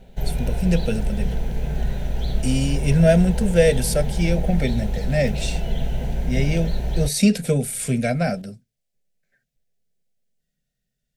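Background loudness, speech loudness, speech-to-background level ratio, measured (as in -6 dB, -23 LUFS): -27.5 LUFS, -22.0 LUFS, 5.5 dB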